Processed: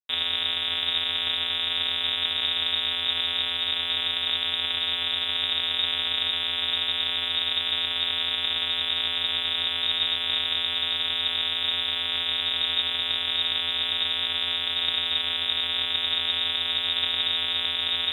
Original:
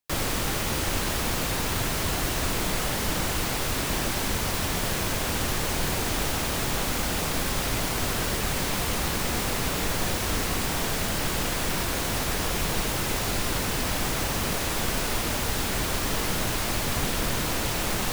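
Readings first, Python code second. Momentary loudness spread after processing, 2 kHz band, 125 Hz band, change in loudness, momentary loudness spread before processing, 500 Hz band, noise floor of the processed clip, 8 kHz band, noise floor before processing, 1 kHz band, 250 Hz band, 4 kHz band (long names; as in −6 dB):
1 LU, −0.5 dB, below −15 dB, +3.0 dB, 0 LU, −12.0 dB, −29 dBFS, below −25 dB, −28 dBFS, −7.5 dB, −16.0 dB, +10.5 dB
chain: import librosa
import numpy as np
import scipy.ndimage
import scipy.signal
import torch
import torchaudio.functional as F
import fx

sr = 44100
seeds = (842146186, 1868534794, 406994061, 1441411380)

y = np.r_[np.sort(x[:len(x) // 256 * 256].reshape(-1, 256), axis=1).ravel(), x[len(x) // 256 * 256:]]
y = fx.freq_invert(y, sr, carrier_hz=3700)
y = np.sign(y) * np.maximum(np.abs(y) - 10.0 ** (-51.5 / 20.0), 0.0)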